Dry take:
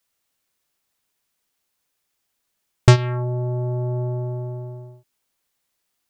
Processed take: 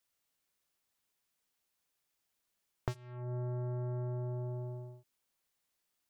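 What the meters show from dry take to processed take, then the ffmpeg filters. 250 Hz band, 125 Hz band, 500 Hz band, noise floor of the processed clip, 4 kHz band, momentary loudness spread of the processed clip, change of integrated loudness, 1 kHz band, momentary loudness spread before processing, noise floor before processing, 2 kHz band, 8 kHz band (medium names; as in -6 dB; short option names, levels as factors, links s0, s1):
-17.0 dB, -17.0 dB, -16.5 dB, -83 dBFS, under -25 dB, 9 LU, -18.0 dB, -19.5 dB, 17 LU, -76 dBFS, -25.5 dB, under -25 dB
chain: -af "aeval=exprs='0.891*(cos(1*acos(clip(val(0)/0.891,-1,1)))-cos(1*PI/2))+0.2*(cos(7*acos(clip(val(0)/0.891,-1,1)))-cos(7*PI/2))':c=same,acompressor=threshold=0.0224:ratio=16,volume=0.75"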